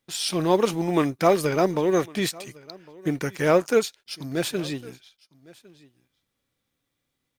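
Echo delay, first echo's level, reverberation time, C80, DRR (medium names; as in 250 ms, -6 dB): 1106 ms, -23.5 dB, no reverb, no reverb, no reverb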